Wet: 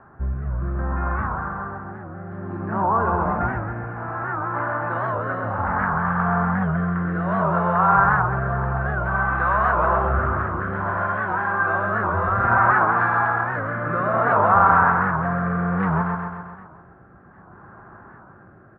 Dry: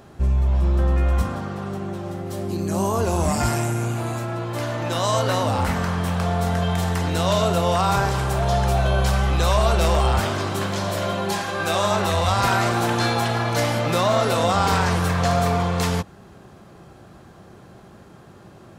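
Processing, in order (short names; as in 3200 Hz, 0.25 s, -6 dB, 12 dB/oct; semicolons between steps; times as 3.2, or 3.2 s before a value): Chebyshev low-pass 1600 Hz, order 4; resonant low shelf 760 Hz -9 dB, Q 1.5; feedback echo 0.131 s, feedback 60%, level -4.5 dB; rotary speaker horn 0.6 Hz; record warp 78 rpm, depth 160 cents; gain +7 dB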